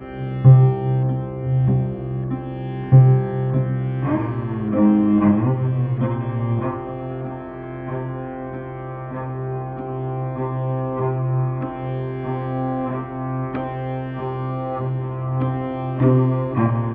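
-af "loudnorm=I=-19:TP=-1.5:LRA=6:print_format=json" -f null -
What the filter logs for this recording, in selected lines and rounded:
"input_i" : "-21.3",
"input_tp" : "-1.6",
"input_lra" : "7.9",
"input_thresh" : "-31.4",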